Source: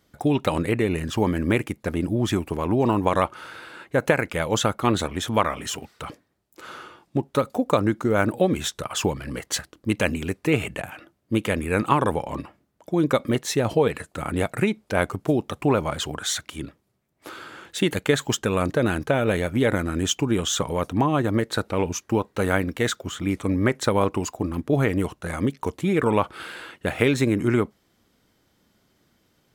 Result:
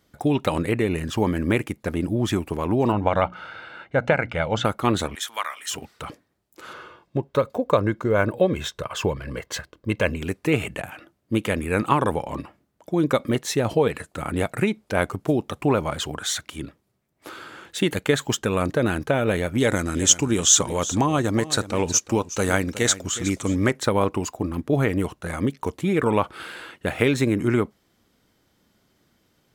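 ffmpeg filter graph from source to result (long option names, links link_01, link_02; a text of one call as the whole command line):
ffmpeg -i in.wav -filter_complex "[0:a]asettb=1/sr,asplit=3[link_01][link_02][link_03];[link_01]atrim=end=2.924[link_04];[link_02]atrim=start=2.92:end=4.65,asetpts=PTS-STARTPTS,afade=type=in:duration=0.004:curve=qsin,afade=type=out:start_time=1.726:duration=0.004:curve=qsin,lowpass=3500,bandreject=frequency=60:width_type=h:width=6,bandreject=frequency=120:width_type=h:width=6,bandreject=frequency=180:width_type=h:width=6,bandreject=frequency=240:width_type=h:width=6,bandreject=frequency=300:width_type=h:width=6,aecho=1:1:1.4:0.43,atrim=end_sample=76293[link_05];[link_03]atrim=start=4.646[link_06];[link_04][link_05]acrossfade=duration=0.004:curve1=hsin:curve2=qsin[link_07];[link_07][link_06]acrossfade=duration=0.004:curve1=qsin:curve2=hsin,asettb=1/sr,asplit=3[link_08][link_09][link_10];[link_08]atrim=end=5.154[link_11];[link_09]atrim=start=5.15:end=5.71,asetpts=PTS-STARTPTS,afade=type=in:duration=0.004:curve=qsin,afade=type=out:start_time=0.556:duration=0.004:curve=qsin,highpass=1400,highshelf=frequency=8000:gain=4.5,bandreject=frequency=2600:width=17[link_12];[link_10]atrim=start=5.706[link_13];[link_11][link_12]acrossfade=duration=0.004:curve1=hsin:curve2=qsin[link_14];[link_14][link_13]acrossfade=duration=0.004:curve1=qsin:curve2=hsin,asettb=1/sr,asplit=3[link_15][link_16][link_17];[link_15]atrim=end=6.734[link_18];[link_16]atrim=start=6.73:end=10.22,asetpts=PTS-STARTPTS,afade=type=in:duration=0.004:curve=qsin,afade=type=out:start_time=3.486:duration=0.004:curve=qsin,equalizer=frequency=10000:width_type=o:width=1.5:gain=-10.5,aecho=1:1:1.9:0.38,atrim=end_sample=153909[link_19];[link_17]atrim=start=10.216[link_20];[link_18][link_19]acrossfade=duration=0.004:curve1=hsin:curve2=qsin[link_21];[link_21][link_20]acrossfade=duration=0.004:curve1=qsin:curve2=hsin,asettb=1/sr,asplit=3[link_22][link_23][link_24];[link_22]atrim=end=19.584[link_25];[link_23]atrim=start=19.58:end=23.71,asetpts=PTS-STARTPTS,afade=type=in:duration=0.004:curve=qsin,afade=type=out:start_time=4.126:duration=0.004:curve=qsin,equalizer=frequency=6700:width=1:gain=13,aecho=1:1:366:0.188,atrim=end_sample=182133[link_26];[link_24]atrim=start=23.706[link_27];[link_25][link_26]acrossfade=duration=0.004:curve1=hsin:curve2=qsin[link_28];[link_28][link_27]acrossfade=duration=0.004:curve1=qsin:curve2=hsin" out.wav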